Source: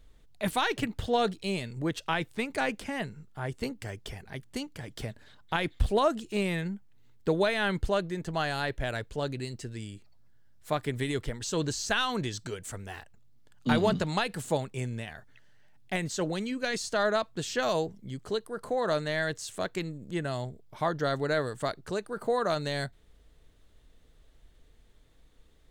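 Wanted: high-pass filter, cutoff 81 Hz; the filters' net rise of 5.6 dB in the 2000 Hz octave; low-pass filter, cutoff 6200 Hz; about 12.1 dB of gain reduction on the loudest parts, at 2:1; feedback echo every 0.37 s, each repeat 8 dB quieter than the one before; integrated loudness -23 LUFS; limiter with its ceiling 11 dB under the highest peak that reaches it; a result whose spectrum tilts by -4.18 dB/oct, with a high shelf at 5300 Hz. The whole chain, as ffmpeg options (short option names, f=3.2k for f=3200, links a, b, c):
-af "highpass=81,lowpass=6.2k,equalizer=f=2k:t=o:g=6.5,highshelf=f=5.3k:g=6.5,acompressor=threshold=-42dB:ratio=2,alimiter=level_in=7dB:limit=-24dB:level=0:latency=1,volume=-7dB,aecho=1:1:370|740|1110|1480|1850:0.398|0.159|0.0637|0.0255|0.0102,volume=18.5dB"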